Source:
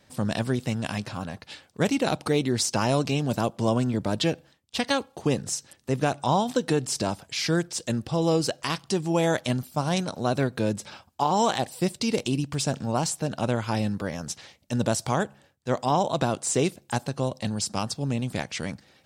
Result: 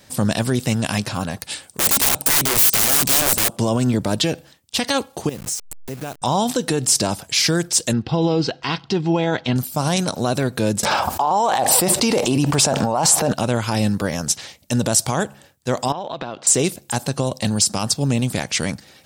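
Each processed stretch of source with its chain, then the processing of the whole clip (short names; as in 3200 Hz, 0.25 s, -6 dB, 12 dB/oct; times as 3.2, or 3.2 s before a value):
1.41–3.57 bell 8700 Hz +12 dB 0.4 oct + wrapped overs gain 25 dB
5.29–6.22 level-crossing sampler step -36 dBFS + compressor 3:1, threshold -39 dBFS
7.93–9.56 LPF 4200 Hz 24 dB/oct + notch comb 590 Hz
10.83–13.33 bell 830 Hz +14.5 dB 2.2 oct + fast leveller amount 50%
15.92–16.47 LPF 3900 Hz 24 dB/oct + low shelf 210 Hz -10.5 dB + compressor 12:1, threshold -32 dBFS
whole clip: limiter -19 dBFS; high shelf 6200 Hz +11 dB; gain +8.5 dB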